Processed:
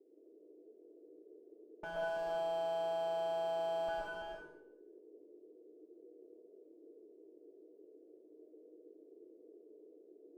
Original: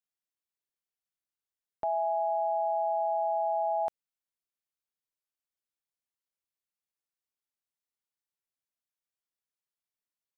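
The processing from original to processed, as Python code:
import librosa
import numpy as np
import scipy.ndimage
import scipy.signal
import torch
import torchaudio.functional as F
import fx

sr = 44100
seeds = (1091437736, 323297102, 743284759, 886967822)

p1 = fx.lower_of_two(x, sr, delay_ms=3.4)
p2 = scipy.signal.sosfilt(scipy.signal.butter(4, 1100.0, 'lowpass', fs=sr, output='sos'), p1)
p3 = fx.low_shelf(p2, sr, hz=410.0, db=-6.5)
p4 = fx.clip_asym(p3, sr, top_db=-42.5, bottom_db=-28.5)
p5 = fx.comb_fb(p4, sr, f0_hz=150.0, decay_s=0.31, harmonics='all', damping=0.0, mix_pct=80)
p6 = fx.dmg_noise_band(p5, sr, seeds[0], low_hz=280.0, high_hz=490.0, level_db=-69.0)
p7 = fx.notch_comb(p6, sr, f0_hz=270.0)
p8 = p7 + fx.echo_multitap(p7, sr, ms=(58, 260, 332, 405), db=(-9.5, -10.5, -5.5, -19.0), dry=0)
p9 = fx.rev_freeverb(p8, sr, rt60_s=0.69, hf_ratio=0.95, predelay_ms=80, drr_db=-3.5)
y = p9 * 10.0 ** (5.0 / 20.0)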